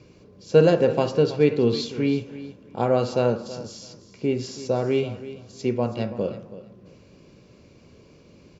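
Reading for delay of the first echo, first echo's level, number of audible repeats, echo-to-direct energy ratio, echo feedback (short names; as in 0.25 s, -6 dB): 0.327 s, -15.0 dB, 2, -15.0 dB, 19%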